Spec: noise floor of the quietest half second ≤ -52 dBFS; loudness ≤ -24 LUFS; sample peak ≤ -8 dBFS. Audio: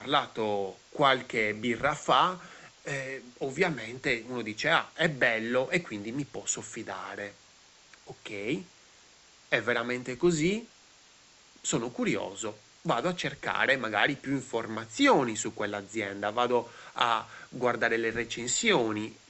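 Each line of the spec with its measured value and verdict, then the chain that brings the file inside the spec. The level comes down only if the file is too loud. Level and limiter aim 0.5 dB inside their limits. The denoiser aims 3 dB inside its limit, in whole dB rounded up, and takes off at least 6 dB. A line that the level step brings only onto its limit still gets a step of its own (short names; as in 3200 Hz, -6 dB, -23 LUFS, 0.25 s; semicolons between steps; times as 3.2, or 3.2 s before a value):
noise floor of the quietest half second -58 dBFS: OK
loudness -29.0 LUFS: OK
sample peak -8.5 dBFS: OK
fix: none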